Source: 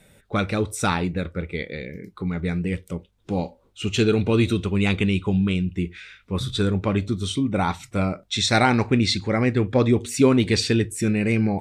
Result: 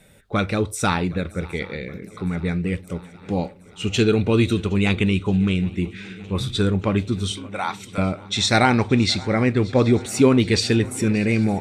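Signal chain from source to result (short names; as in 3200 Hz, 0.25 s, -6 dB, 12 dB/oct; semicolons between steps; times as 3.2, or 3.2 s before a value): 7.31–7.98 Bessel high-pass 850 Hz; on a send: swung echo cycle 0.767 s, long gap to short 3:1, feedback 65%, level -22 dB; on the sum: gain +1.5 dB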